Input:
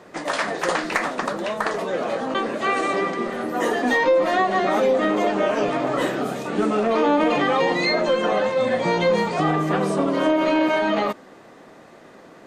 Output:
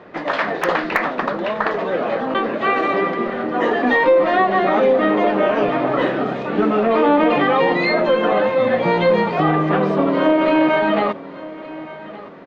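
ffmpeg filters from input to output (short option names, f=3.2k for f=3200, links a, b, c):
-filter_complex "[0:a]acrossover=split=3900[a][b];[a]aecho=1:1:1168|2336|3504:0.126|0.0441|0.0154[c];[b]acrusher=bits=3:mix=0:aa=0.000001[d];[c][d]amix=inputs=2:normalize=0,volume=4dB"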